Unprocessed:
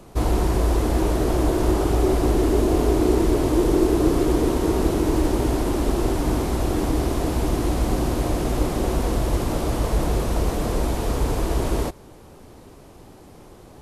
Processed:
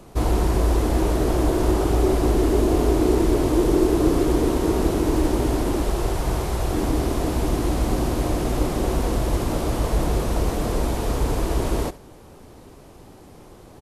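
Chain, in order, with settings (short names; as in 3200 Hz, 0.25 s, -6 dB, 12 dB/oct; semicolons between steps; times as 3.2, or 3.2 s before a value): 5.82–6.73 bell 270 Hz -12 dB 0.54 oct; echo 71 ms -18.5 dB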